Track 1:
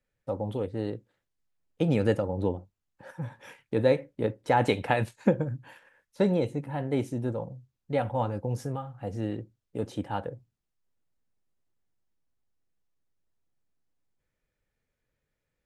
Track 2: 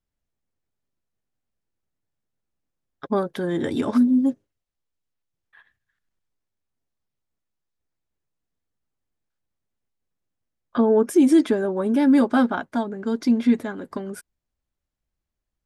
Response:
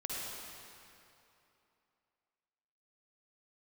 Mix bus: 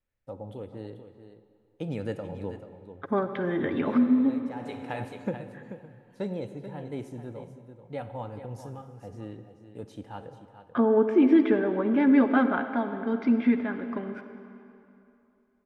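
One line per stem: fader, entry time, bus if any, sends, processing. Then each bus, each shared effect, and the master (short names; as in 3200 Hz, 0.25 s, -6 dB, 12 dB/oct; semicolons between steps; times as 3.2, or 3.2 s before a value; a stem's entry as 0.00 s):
-10.0 dB, 0.00 s, send -11 dB, echo send -10 dB, auto duck -21 dB, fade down 0.25 s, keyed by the second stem
+2.0 dB, 0.00 s, send -7.5 dB, no echo send, ladder low-pass 2800 Hz, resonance 40%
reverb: on, RT60 2.9 s, pre-delay 46 ms
echo: echo 0.436 s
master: dry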